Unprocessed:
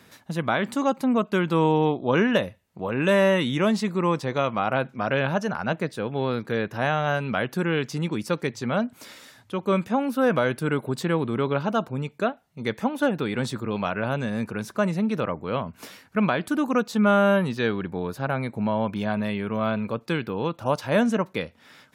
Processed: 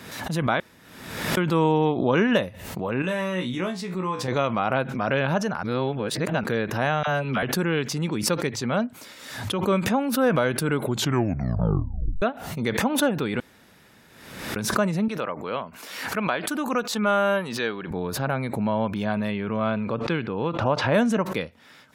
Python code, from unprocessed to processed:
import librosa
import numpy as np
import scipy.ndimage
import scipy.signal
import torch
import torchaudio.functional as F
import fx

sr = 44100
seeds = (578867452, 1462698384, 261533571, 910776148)

y = fx.comb_fb(x, sr, f0_hz=61.0, decay_s=0.2, harmonics='all', damping=0.0, mix_pct=100, at=(3.02, 4.28))
y = fx.dispersion(y, sr, late='lows', ms=45.0, hz=770.0, at=(7.03, 7.43))
y = fx.highpass(y, sr, hz=480.0, slope=6, at=(15.08, 17.91))
y = fx.lowpass(y, sr, hz=fx.line((19.3, 4700.0), (20.93, 2800.0)), slope=12, at=(19.3, 20.93), fade=0.02)
y = fx.edit(y, sr, fx.room_tone_fill(start_s=0.6, length_s=0.77),
    fx.reverse_span(start_s=5.63, length_s=0.81),
    fx.tape_stop(start_s=10.82, length_s=1.4),
    fx.room_tone_fill(start_s=13.4, length_s=1.16), tone=tone)
y = fx.pre_swell(y, sr, db_per_s=56.0)